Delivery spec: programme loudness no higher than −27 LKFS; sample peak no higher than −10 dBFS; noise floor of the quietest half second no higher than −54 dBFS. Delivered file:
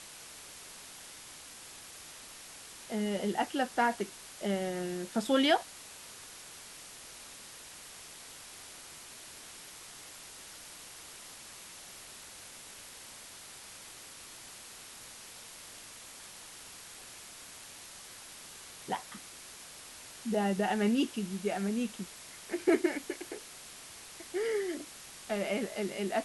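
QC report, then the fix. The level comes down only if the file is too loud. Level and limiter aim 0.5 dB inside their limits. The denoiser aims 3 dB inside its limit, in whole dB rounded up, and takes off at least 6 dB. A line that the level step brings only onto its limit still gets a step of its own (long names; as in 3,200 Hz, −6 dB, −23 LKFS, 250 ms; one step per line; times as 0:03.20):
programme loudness −37.5 LKFS: in spec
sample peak −14.5 dBFS: in spec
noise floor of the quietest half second −50 dBFS: out of spec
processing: broadband denoise 7 dB, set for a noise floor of −50 dBFS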